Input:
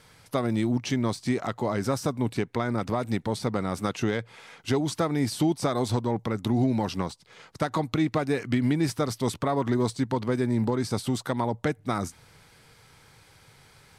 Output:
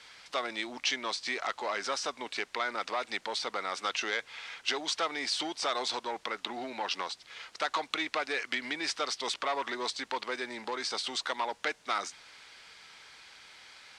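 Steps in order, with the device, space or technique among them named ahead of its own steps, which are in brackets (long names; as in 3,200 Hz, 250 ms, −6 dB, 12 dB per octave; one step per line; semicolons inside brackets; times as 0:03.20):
0:06.35–0:06.91: low-pass filter 3,800 Hz
aircraft cabin announcement (band-pass filter 380–3,600 Hz; soft clipping −20.5 dBFS, distortion −18 dB; brown noise bed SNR 17 dB)
meter weighting curve ITU-R 468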